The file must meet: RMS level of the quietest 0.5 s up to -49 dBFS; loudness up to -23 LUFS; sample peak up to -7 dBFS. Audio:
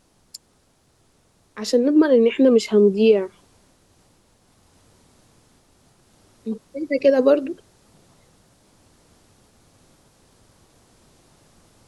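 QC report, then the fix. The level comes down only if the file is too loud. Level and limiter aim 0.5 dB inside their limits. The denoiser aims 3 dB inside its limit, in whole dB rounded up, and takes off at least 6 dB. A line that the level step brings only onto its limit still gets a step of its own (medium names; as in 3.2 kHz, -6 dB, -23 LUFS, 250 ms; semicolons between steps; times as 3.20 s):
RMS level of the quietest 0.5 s -61 dBFS: pass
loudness -18.0 LUFS: fail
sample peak -5.0 dBFS: fail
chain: trim -5.5 dB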